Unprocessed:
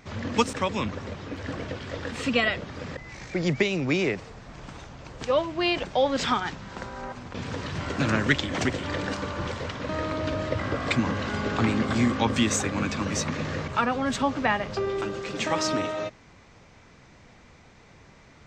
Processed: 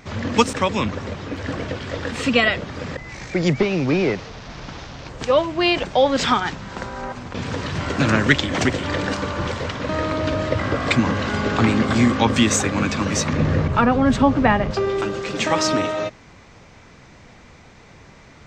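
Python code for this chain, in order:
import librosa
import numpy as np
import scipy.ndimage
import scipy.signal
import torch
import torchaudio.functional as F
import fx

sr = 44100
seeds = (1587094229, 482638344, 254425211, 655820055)

y = fx.delta_mod(x, sr, bps=32000, step_db=-39.0, at=(3.59, 5.09))
y = fx.tilt_eq(y, sr, slope=-2.5, at=(13.33, 14.71))
y = y * librosa.db_to_amplitude(6.5)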